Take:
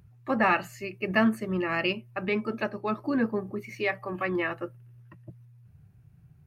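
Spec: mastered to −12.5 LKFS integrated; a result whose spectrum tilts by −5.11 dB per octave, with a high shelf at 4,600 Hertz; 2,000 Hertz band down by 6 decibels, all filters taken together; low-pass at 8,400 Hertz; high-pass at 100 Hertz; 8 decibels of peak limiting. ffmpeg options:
ffmpeg -i in.wav -af "highpass=100,lowpass=8400,equalizer=frequency=2000:width_type=o:gain=-8.5,highshelf=frequency=4600:gain=5.5,volume=20.5dB,alimiter=limit=-1.5dB:level=0:latency=1" out.wav

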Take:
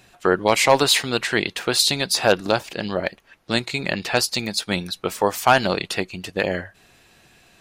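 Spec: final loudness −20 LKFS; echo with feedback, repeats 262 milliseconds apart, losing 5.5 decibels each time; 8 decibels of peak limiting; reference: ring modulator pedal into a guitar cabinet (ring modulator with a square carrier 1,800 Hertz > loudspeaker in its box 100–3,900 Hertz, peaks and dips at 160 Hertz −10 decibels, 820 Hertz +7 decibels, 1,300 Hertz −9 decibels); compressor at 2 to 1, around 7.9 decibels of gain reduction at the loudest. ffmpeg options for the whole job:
ffmpeg -i in.wav -af "acompressor=threshold=-25dB:ratio=2,alimiter=limit=-15.5dB:level=0:latency=1,aecho=1:1:262|524|786|1048|1310|1572|1834:0.531|0.281|0.149|0.079|0.0419|0.0222|0.0118,aeval=exprs='val(0)*sgn(sin(2*PI*1800*n/s))':channel_layout=same,highpass=100,equalizer=frequency=160:width_type=q:width=4:gain=-10,equalizer=frequency=820:width_type=q:width=4:gain=7,equalizer=frequency=1300:width_type=q:width=4:gain=-9,lowpass=frequency=3900:width=0.5412,lowpass=frequency=3900:width=1.3066,volume=9.5dB" out.wav

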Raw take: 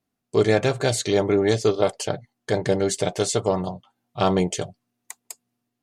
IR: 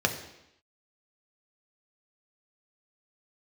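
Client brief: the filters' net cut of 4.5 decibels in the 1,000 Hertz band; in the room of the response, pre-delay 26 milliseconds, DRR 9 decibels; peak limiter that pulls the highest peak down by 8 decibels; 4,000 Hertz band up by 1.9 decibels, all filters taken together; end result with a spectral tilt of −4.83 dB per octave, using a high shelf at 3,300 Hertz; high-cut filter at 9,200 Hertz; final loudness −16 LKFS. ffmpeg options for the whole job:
-filter_complex "[0:a]lowpass=9200,equalizer=frequency=1000:width_type=o:gain=-6.5,highshelf=frequency=3300:gain=-5.5,equalizer=frequency=4000:width_type=o:gain=6.5,alimiter=limit=-15dB:level=0:latency=1,asplit=2[link_01][link_02];[1:a]atrim=start_sample=2205,adelay=26[link_03];[link_02][link_03]afir=irnorm=-1:irlink=0,volume=-20.5dB[link_04];[link_01][link_04]amix=inputs=2:normalize=0,volume=10.5dB"

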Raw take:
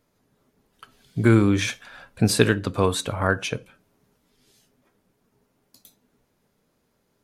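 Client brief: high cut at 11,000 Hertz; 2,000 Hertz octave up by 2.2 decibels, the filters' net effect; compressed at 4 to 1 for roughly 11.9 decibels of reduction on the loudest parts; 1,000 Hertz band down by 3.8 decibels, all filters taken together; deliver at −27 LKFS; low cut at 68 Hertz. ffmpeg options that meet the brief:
ffmpeg -i in.wav -af "highpass=68,lowpass=11000,equalizer=frequency=1000:width_type=o:gain=-7.5,equalizer=frequency=2000:width_type=o:gain=6,acompressor=threshold=-28dB:ratio=4,volume=5.5dB" out.wav

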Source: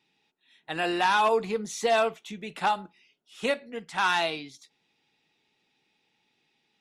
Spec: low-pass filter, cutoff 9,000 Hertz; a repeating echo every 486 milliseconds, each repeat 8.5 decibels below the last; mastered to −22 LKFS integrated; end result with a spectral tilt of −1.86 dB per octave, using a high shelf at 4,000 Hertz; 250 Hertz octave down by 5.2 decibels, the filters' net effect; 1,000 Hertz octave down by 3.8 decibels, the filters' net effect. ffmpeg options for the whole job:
ffmpeg -i in.wav -af "lowpass=9000,equalizer=frequency=250:width_type=o:gain=-7.5,equalizer=frequency=1000:width_type=o:gain=-4.5,highshelf=frequency=4000:gain=3,aecho=1:1:486|972|1458|1944:0.376|0.143|0.0543|0.0206,volume=7.5dB" out.wav

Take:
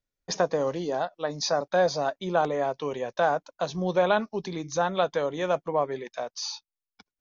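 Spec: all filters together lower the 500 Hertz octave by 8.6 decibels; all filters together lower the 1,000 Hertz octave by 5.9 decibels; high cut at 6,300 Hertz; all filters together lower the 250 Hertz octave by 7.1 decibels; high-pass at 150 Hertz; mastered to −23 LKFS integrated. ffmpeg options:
ffmpeg -i in.wav -af "highpass=150,lowpass=6300,equalizer=frequency=250:width_type=o:gain=-6.5,equalizer=frequency=500:width_type=o:gain=-8,equalizer=frequency=1000:width_type=o:gain=-4,volume=11dB" out.wav

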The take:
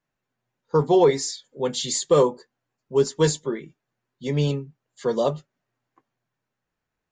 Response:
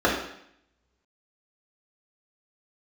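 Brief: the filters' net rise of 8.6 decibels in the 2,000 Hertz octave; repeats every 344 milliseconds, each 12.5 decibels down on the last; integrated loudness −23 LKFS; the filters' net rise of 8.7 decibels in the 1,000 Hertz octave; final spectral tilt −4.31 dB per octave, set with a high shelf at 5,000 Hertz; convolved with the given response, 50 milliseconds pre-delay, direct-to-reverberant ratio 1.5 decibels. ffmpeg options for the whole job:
-filter_complex "[0:a]equalizer=frequency=1000:width_type=o:gain=9,equalizer=frequency=2000:width_type=o:gain=6.5,highshelf=frequency=5000:gain=8,aecho=1:1:344|688|1032:0.237|0.0569|0.0137,asplit=2[link_01][link_02];[1:a]atrim=start_sample=2205,adelay=50[link_03];[link_02][link_03]afir=irnorm=-1:irlink=0,volume=-20dB[link_04];[link_01][link_04]amix=inputs=2:normalize=0,volume=-6dB"

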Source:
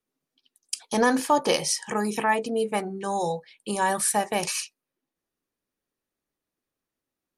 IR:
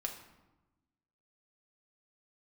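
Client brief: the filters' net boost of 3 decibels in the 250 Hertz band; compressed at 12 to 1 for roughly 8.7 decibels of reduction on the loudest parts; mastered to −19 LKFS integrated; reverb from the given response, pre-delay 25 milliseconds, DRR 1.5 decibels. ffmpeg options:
-filter_complex "[0:a]equalizer=frequency=250:width_type=o:gain=3.5,acompressor=threshold=-24dB:ratio=12,asplit=2[link_01][link_02];[1:a]atrim=start_sample=2205,adelay=25[link_03];[link_02][link_03]afir=irnorm=-1:irlink=0,volume=-1.5dB[link_04];[link_01][link_04]amix=inputs=2:normalize=0,volume=8.5dB"

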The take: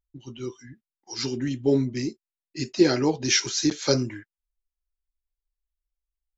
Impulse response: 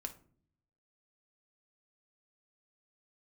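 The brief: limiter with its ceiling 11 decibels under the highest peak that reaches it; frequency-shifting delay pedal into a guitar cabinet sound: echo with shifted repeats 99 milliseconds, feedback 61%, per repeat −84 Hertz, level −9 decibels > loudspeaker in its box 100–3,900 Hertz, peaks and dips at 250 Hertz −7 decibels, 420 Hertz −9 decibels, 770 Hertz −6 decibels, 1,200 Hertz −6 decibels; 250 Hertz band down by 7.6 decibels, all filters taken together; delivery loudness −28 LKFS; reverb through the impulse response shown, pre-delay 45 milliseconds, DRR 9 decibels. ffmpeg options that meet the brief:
-filter_complex "[0:a]equalizer=frequency=250:width_type=o:gain=-4.5,alimiter=limit=-18.5dB:level=0:latency=1,asplit=2[link_01][link_02];[1:a]atrim=start_sample=2205,adelay=45[link_03];[link_02][link_03]afir=irnorm=-1:irlink=0,volume=-6.5dB[link_04];[link_01][link_04]amix=inputs=2:normalize=0,asplit=9[link_05][link_06][link_07][link_08][link_09][link_10][link_11][link_12][link_13];[link_06]adelay=99,afreqshift=-84,volume=-9dB[link_14];[link_07]adelay=198,afreqshift=-168,volume=-13.3dB[link_15];[link_08]adelay=297,afreqshift=-252,volume=-17.6dB[link_16];[link_09]adelay=396,afreqshift=-336,volume=-21.9dB[link_17];[link_10]adelay=495,afreqshift=-420,volume=-26.2dB[link_18];[link_11]adelay=594,afreqshift=-504,volume=-30.5dB[link_19];[link_12]adelay=693,afreqshift=-588,volume=-34.8dB[link_20];[link_13]adelay=792,afreqshift=-672,volume=-39.1dB[link_21];[link_05][link_14][link_15][link_16][link_17][link_18][link_19][link_20][link_21]amix=inputs=9:normalize=0,highpass=100,equalizer=frequency=250:width_type=q:width=4:gain=-7,equalizer=frequency=420:width_type=q:width=4:gain=-9,equalizer=frequency=770:width_type=q:width=4:gain=-6,equalizer=frequency=1200:width_type=q:width=4:gain=-6,lowpass=frequency=3900:width=0.5412,lowpass=frequency=3900:width=1.3066,volume=6.5dB"

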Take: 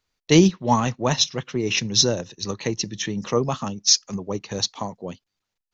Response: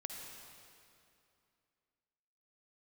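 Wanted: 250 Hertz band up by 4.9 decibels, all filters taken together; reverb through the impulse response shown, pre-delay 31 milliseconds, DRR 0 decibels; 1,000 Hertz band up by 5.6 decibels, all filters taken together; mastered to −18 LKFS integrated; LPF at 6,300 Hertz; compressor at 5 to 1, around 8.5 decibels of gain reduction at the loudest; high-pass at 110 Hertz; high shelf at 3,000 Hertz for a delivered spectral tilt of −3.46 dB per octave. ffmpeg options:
-filter_complex "[0:a]highpass=110,lowpass=6300,equalizer=frequency=250:width_type=o:gain=7,equalizer=frequency=1000:width_type=o:gain=5.5,highshelf=frequency=3000:gain=6.5,acompressor=threshold=-15dB:ratio=5,asplit=2[link_01][link_02];[1:a]atrim=start_sample=2205,adelay=31[link_03];[link_02][link_03]afir=irnorm=-1:irlink=0,volume=1.5dB[link_04];[link_01][link_04]amix=inputs=2:normalize=0,volume=1.5dB"

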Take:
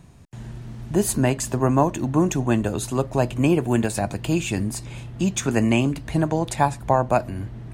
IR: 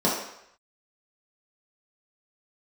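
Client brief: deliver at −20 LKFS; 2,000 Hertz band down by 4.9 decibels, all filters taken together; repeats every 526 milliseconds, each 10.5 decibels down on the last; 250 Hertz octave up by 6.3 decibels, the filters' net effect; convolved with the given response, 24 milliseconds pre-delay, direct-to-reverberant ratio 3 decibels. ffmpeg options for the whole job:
-filter_complex "[0:a]equalizer=frequency=250:width_type=o:gain=8,equalizer=frequency=2000:width_type=o:gain=-7,aecho=1:1:526|1052|1578:0.299|0.0896|0.0269,asplit=2[link_01][link_02];[1:a]atrim=start_sample=2205,adelay=24[link_03];[link_02][link_03]afir=irnorm=-1:irlink=0,volume=-18.5dB[link_04];[link_01][link_04]amix=inputs=2:normalize=0,volume=-5.5dB"

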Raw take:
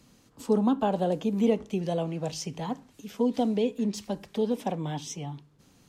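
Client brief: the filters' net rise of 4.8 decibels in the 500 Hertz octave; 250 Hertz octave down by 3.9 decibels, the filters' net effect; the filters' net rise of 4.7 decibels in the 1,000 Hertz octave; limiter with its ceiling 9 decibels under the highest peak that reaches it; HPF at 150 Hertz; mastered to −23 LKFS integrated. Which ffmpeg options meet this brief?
ffmpeg -i in.wav -af "highpass=150,equalizer=frequency=250:width_type=o:gain=-5,equalizer=frequency=500:width_type=o:gain=6,equalizer=frequency=1000:width_type=o:gain=4,volume=7dB,alimiter=limit=-11dB:level=0:latency=1" out.wav

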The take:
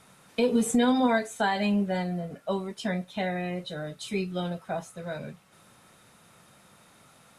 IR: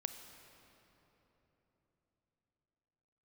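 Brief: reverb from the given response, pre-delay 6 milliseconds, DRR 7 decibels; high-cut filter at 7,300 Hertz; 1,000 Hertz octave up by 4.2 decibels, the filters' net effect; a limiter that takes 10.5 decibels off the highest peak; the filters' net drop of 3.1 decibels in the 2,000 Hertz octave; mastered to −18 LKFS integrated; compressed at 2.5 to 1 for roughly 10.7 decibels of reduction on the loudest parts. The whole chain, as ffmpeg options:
-filter_complex "[0:a]lowpass=7300,equalizer=frequency=1000:width_type=o:gain=7,equalizer=frequency=2000:width_type=o:gain=-7,acompressor=threshold=-35dB:ratio=2.5,alimiter=level_in=6.5dB:limit=-24dB:level=0:latency=1,volume=-6.5dB,asplit=2[link_01][link_02];[1:a]atrim=start_sample=2205,adelay=6[link_03];[link_02][link_03]afir=irnorm=-1:irlink=0,volume=-6dB[link_04];[link_01][link_04]amix=inputs=2:normalize=0,volume=21dB"

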